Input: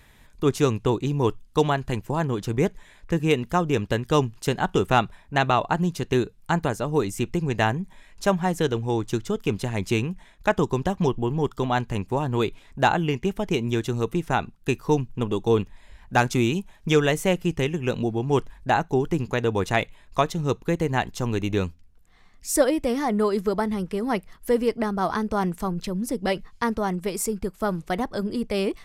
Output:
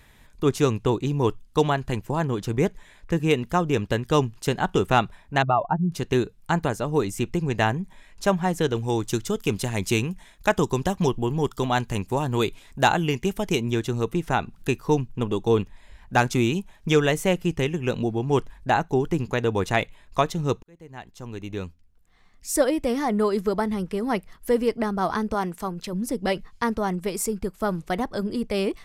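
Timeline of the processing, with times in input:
5.42–5.92 s: spectral contrast enhancement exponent 2
8.75–13.61 s: treble shelf 4.6 kHz +10 dB
14.28–14.71 s: upward compressor, threshold -31 dBFS
20.63–22.90 s: fade in
25.34–25.93 s: bass shelf 190 Hz -10 dB

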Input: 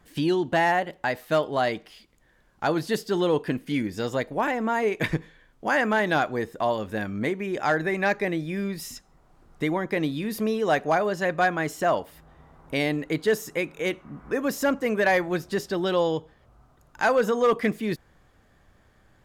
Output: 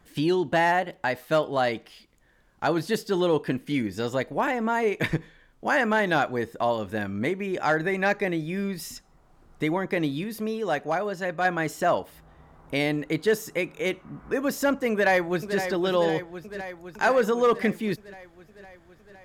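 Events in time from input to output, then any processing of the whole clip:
10.24–11.45 s: gain -4 dB
14.91–15.59 s: echo throw 510 ms, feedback 70%, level -9 dB

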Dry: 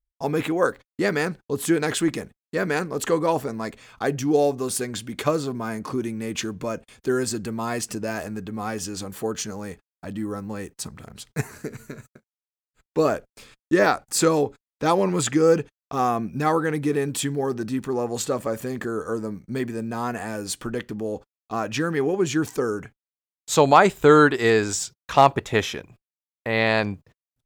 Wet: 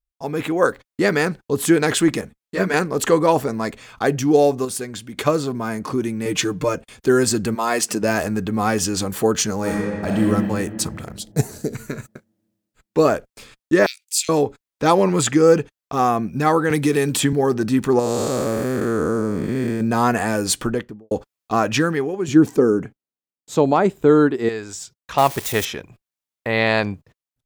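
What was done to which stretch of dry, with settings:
2.21–2.74 s: three-phase chorus
4.65–5.17 s: gain -5.5 dB
6.25–6.75 s: comb 6.6 ms, depth 96%
7.54–8.02 s: high-pass 500 Hz -> 180 Hz
9.57–10.22 s: reverb throw, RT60 2.4 s, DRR -3 dB
11.17–11.75 s: high-order bell 1.6 kHz -12 dB
13.86–14.29 s: steep high-pass 2.4 kHz 48 dB/octave
16.70–17.33 s: three bands compressed up and down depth 70%
17.99–19.81 s: spectral blur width 344 ms
20.54–21.11 s: studio fade out
22.28–24.49 s: peaking EQ 260 Hz +14 dB 2.7 oct
25.18–25.65 s: zero-crossing glitches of -18 dBFS
whole clip: level rider gain up to 13 dB; trim -2.5 dB

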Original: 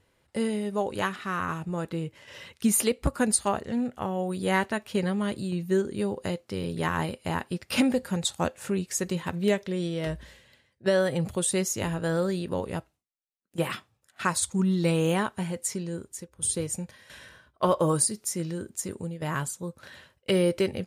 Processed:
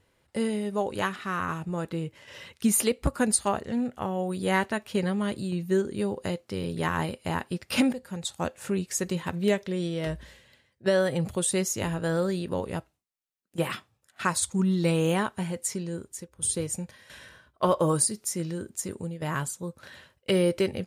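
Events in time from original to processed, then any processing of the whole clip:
7.93–8.72 s: fade in, from -12 dB

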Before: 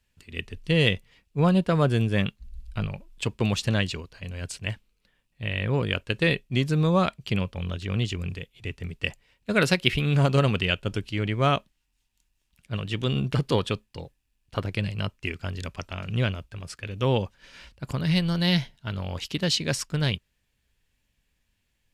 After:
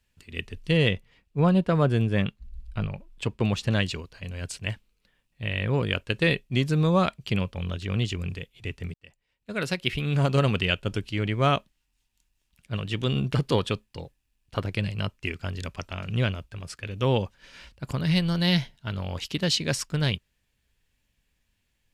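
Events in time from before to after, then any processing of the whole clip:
0.77–3.72 s: treble shelf 3.4 kHz -7.5 dB
8.94–10.56 s: fade in

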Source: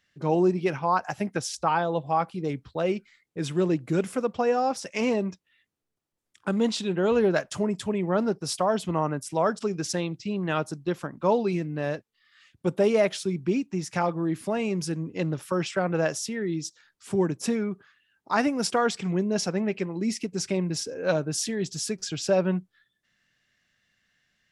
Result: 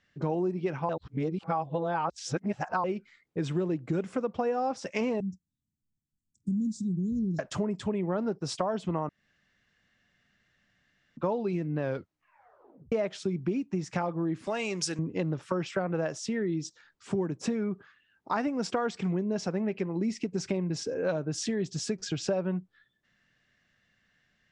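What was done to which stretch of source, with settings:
0.89–2.84 s: reverse
5.20–7.39 s: inverse Chebyshev band-stop 630–2600 Hz, stop band 60 dB
9.09–11.17 s: room tone
11.80 s: tape stop 1.12 s
14.47–14.99 s: tilt EQ +4.5 dB/octave
whole clip: steep low-pass 8.3 kHz 36 dB/octave; treble shelf 2.5 kHz -9.5 dB; compression 5:1, threshold -31 dBFS; trim +4 dB

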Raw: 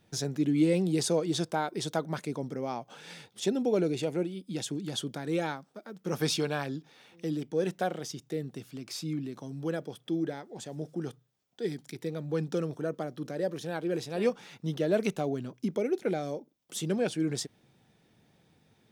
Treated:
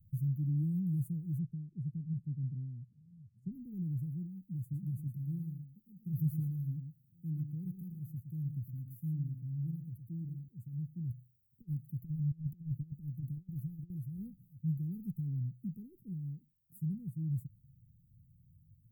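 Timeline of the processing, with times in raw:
1.39–3.52 s: low-pass 3.2 kHz
4.61–10.48 s: delay 114 ms -8 dB
11.09–13.90 s: compressor with a negative ratio -36 dBFS, ratio -0.5
whole clip: inverse Chebyshev band-stop 670–4500 Hz, stop band 80 dB; bass shelf 190 Hz +6.5 dB; trim +5 dB

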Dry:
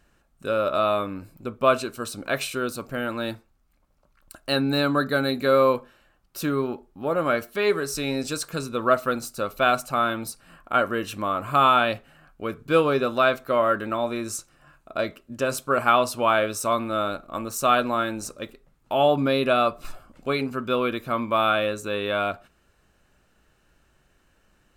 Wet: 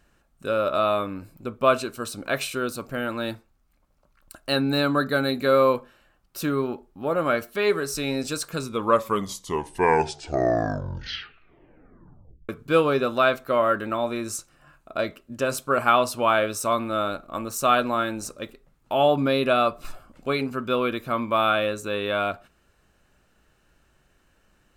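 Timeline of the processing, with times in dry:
8.56 s: tape stop 3.93 s

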